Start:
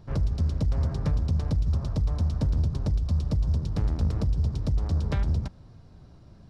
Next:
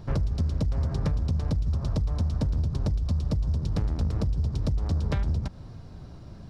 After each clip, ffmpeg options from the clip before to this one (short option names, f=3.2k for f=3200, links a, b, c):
-af "acompressor=threshold=-30dB:ratio=6,volume=7dB"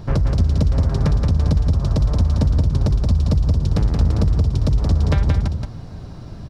-af "aecho=1:1:175:0.596,volume=8dB"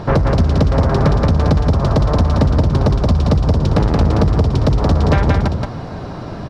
-filter_complex "[0:a]asplit=2[a][b];[b]highpass=f=720:p=1,volume=21dB,asoftclip=type=tanh:threshold=-6dB[c];[a][c]amix=inputs=2:normalize=0,lowpass=f=1.1k:p=1,volume=-6dB,volume=4.5dB"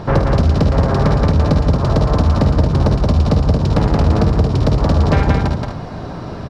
-af "aecho=1:1:51|75:0.398|0.376,volume=-1dB"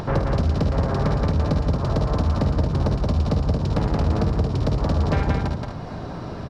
-af "acompressor=mode=upward:threshold=-18dB:ratio=2.5,volume=-7.5dB"